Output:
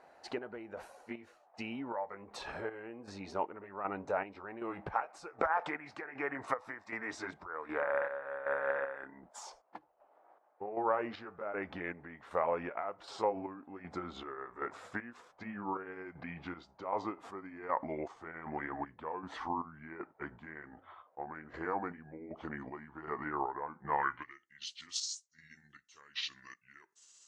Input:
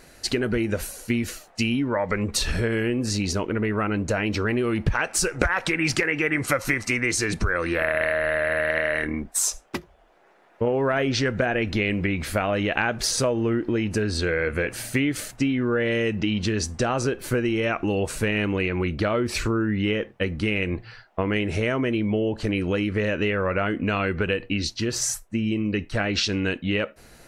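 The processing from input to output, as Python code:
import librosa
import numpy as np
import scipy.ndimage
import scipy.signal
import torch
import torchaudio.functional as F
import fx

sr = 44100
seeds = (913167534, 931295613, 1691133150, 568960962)

y = fx.pitch_glide(x, sr, semitones=-6.5, runs='starting unshifted')
y = fx.chopper(y, sr, hz=1.3, depth_pct=60, duty_pct=50)
y = fx.filter_sweep_bandpass(y, sr, from_hz=820.0, to_hz=6600.0, start_s=23.94, end_s=24.44, q=2.9)
y = y * librosa.db_to_amplitude(1.5)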